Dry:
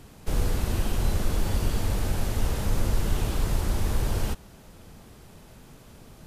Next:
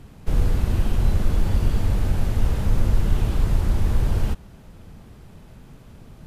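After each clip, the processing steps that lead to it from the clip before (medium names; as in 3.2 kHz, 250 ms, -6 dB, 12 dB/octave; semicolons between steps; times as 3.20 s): tone controls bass +6 dB, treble -6 dB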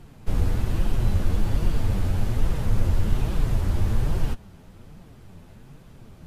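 flange 1.2 Hz, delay 5.3 ms, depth 6.8 ms, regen +40%; trim +2 dB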